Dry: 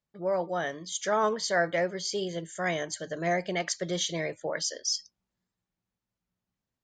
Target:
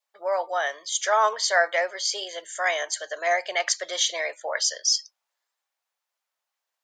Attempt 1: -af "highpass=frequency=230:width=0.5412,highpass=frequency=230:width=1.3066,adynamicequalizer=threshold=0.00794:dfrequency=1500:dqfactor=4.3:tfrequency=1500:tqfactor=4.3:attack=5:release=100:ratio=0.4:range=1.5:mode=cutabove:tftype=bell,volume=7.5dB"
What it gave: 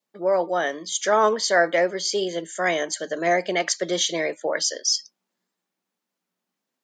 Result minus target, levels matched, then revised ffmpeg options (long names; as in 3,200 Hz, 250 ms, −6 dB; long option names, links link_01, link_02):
250 Hz band +20.0 dB
-af "highpass=frequency=640:width=0.5412,highpass=frequency=640:width=1.3066,adynamicequalizer=threshold=0.00794:dfrequency=1500:dqfactor=4.3:tfrequency=1500:tqfactor=4.3:attack=5:release=100:ratio=0.4:range=1.5:mode=cutabove:tftype=bell,volume=7.5dB"